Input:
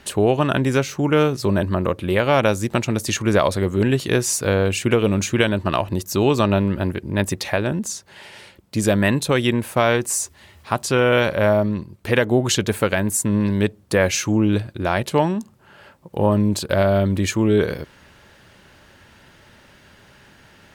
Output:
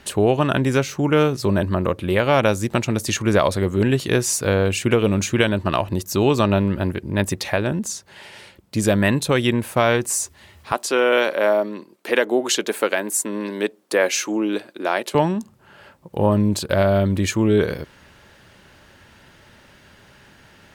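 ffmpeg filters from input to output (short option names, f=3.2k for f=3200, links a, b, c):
-filter_complex "[0:a]asettb=1/sr,asplit=3[a][b][c];[a]atrim=end=10.724[d];[b]atrim=start=10.72:end=15.15,asetpts=PTS-STARTPTS,afade=t=in:d=0.004:c=qsin,afade=t=out:st=4.426:d=0.004:c=qsin,highpass=f=280:w=0.5412,highpass=f=280:w=1.3066[e];[c]atrim=start=15.146[f];[d][e]acrossfade=d=0.004:c1=hsin:c2=qsin[g];[g][f]acrossfade=d=0.004:c1=qsin:c2=hsin"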